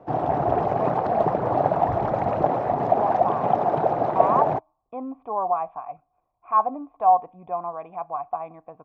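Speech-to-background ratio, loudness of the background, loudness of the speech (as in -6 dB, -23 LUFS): -4.5 dB, -23.0 LUFS, -27.5 LUFS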